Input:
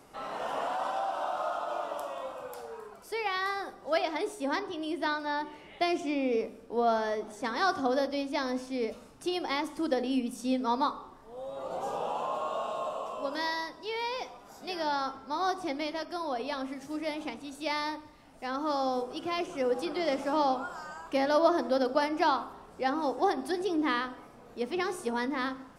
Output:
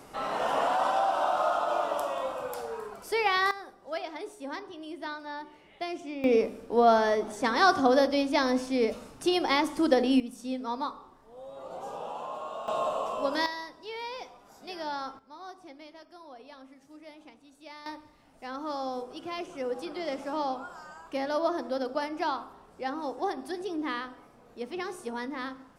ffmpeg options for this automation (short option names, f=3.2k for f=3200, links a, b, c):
-af "asetnsamples=n=441:p=0,asendcmd='3.51 volume volume -6.5dB;6.24 volume volume 6dB;10.2 volume volume -4.5dB;12.68 volume volume 5dB;13.46 volume volume -4dB;15.19 volume volume -14.5dB;17.86 volume volume -4dB',volume=6dB"